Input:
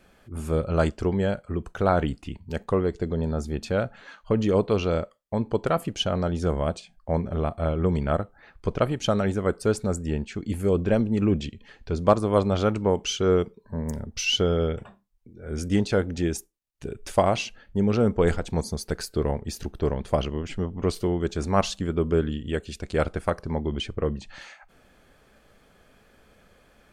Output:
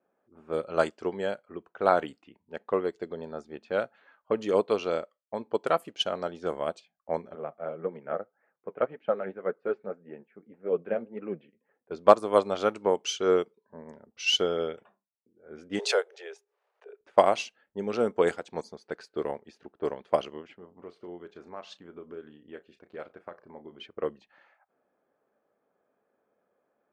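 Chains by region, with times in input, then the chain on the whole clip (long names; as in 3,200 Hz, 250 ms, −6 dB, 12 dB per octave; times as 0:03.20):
0:07.35–0:11.91: flanger 1.8 Hz, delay 2.8 ms, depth 8 ms, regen +46% + loudspeaker in its box 150–2,300 Hz, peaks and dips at 160 Hz +7 dB, 310 Hz −3 dB, 500 Hz +5 dB, 1,000 Hz −4 dB
0:15.79–0:17.01: Butterworth high-pass 390 Hz 96 dB per octave + background raised ahead of every attack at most 73 dB per second
0:20.55–0:23.86: downward compressor 8 to 1, threshold −27 dBFS + double-tracking delay 34 ms −10 dB
whole clip: high-pass filter 360 Hz 12 dB per octave; low-pass that shuts in the quiet parts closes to 890 Hz, open at −23.5 dBFS; expander for the loud parts 1.5 to 1, over −45 dBFS; level +3.5 dB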